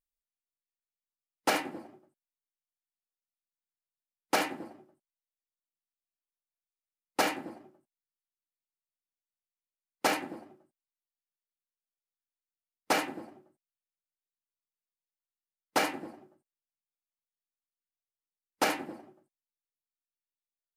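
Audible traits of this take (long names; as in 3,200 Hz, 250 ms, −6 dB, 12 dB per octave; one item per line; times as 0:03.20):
background noise floor −96 dBFS
spectral slope −3.0 dB per octave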